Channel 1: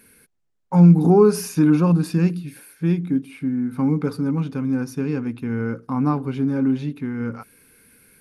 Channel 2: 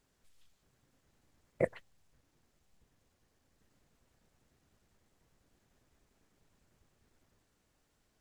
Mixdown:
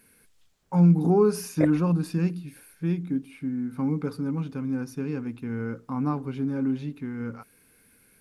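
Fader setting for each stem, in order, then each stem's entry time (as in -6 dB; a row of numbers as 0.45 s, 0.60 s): -6.5 dB, +2.5 dB; 0.00 s, 0.00 s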